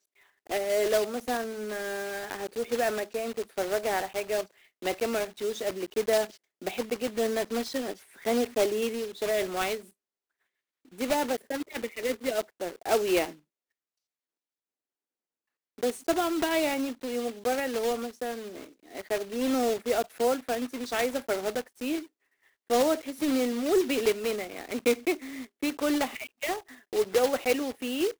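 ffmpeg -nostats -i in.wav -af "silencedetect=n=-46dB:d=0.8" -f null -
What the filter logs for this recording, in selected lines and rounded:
silence_start: 9.89
silence_end: 10.92 | silence_duration: 1.03
silence_start: 13.35
silence_end: 15.78 | silence_duration: 2.43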